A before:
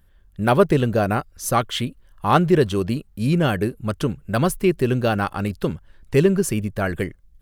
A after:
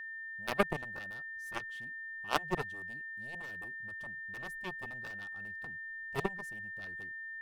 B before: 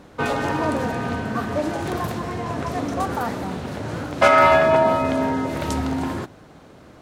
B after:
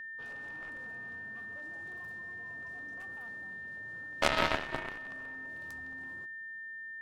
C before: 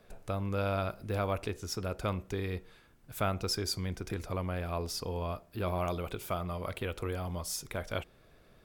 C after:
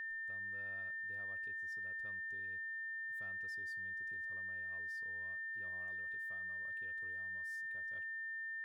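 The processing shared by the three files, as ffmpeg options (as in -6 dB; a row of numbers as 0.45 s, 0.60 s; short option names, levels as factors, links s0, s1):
-af "aeval=exprs='0.891*(cos(1*acos(clip(val(0)/0.891,-1,1)))-cos(1*PI/2))+0.0708*(cos(2*acos(clip(val(0)/0.891,-1,1)))-cos(2*PI/2))+0.316*(cos(3*acos(clip(val(0)/0.891,-1,1)))-cos(3*PI/2))+0.0178*(cos(6*acos(clip(val(0)/0.891,-1,1)))-cos(6*PI/2))+0.0141*(cos(8*acos(clip(val(0)/0.891,-1,1)))-cos(8*PI/2))':c=same,aeval=exprs='val(0)+0.0141*sin(2*PI*1800*n/s)':c=same,volume=0.631"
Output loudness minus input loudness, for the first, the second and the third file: -18.0 LU, -16.5 LU, -6.5 LU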